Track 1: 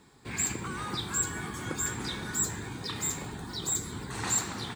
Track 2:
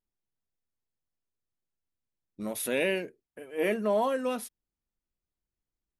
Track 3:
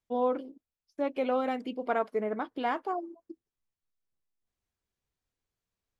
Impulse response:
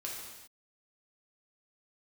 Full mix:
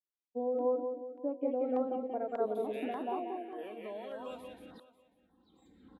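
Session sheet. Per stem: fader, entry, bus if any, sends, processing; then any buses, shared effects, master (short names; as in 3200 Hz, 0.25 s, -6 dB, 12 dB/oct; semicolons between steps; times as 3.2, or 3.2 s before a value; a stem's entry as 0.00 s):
-18.0 dB, 1.90 s, muted 2.81–4.15, no bus, no send, no echo send, comb 3.8 ms, depth 92%; dB-ramp tremolo swelling 0.69 Hz, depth 30 dB
-14.0 dB, 0.00 s, bus A, no send, echo send -4.5 dB, tilt +4.5 dB/oct; compressor, threshold -28 dBFS, peak gain reduction 11.5 dB
-5.5 dB, 0.25 s, bus A, no send, echo send -5 dB, de-hum 109.8 Hz, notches 5; spectral expander 1.5:1
bus A: 0.0 dB, compressor 2:1, threshold -41 dBFS, peak gain reduction 8 dB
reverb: off
echo: feedback echo 0.182 s, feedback 47%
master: EQ curve 110 Hz 0 dB, 290 Hz +8 dB, 3700 Hz -3 dB, 5500 Hz -23 dB; LFO notch saw down 1.7 Hz 930–2600 Hz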